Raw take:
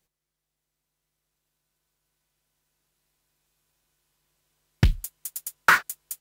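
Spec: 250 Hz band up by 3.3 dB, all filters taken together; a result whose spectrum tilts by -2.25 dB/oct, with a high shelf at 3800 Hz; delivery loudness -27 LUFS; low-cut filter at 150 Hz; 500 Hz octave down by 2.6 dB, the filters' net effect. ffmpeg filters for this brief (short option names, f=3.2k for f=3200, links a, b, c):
-af "highpass=150,equalizer=f=250:t=o:g=9,equalizer=f=500:t=o:g=-7.5,highshelf=f=3.8k:g=7.5,volume=-3.5dB"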